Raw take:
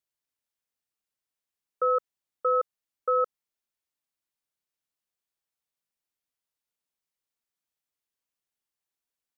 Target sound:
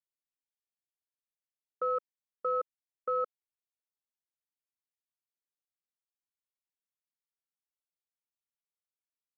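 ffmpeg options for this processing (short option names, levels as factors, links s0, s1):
-af "afwtdn=0.00891,alimiter=limit=0.0668:level=0:latency=1"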